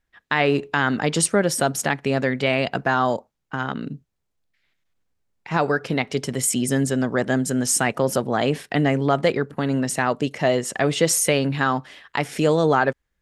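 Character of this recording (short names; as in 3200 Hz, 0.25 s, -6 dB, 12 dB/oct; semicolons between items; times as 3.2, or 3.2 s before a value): noise floor -76 dBFS; spectral tilt -4.0 dB/oct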